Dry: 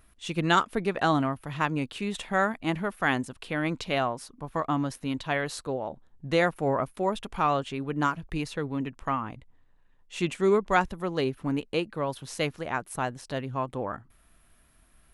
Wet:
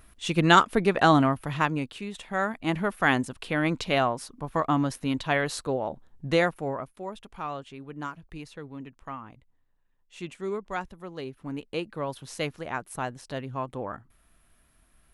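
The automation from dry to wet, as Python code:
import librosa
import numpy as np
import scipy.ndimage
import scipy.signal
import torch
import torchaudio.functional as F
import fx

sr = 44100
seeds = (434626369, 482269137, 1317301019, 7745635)

y = fx.gain(x, sr, db=fx.line((1.46, 5.0), (2.14, -6.0), (2.85, 3.0), (6.28, 3.0), (6.93, -9.5), (11.27, -9.5), (11.9, -2.0)))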